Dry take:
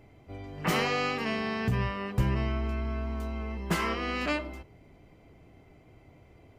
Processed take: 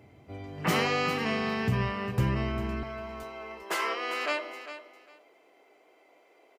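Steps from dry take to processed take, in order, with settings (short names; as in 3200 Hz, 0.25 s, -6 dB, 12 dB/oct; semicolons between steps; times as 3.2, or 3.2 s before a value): HPF 73 Hz 24 dB/oct, from 2.83 s 410 Hz; feedback echo 0.4 s, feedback 19%, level -12 dB; gain +1 dB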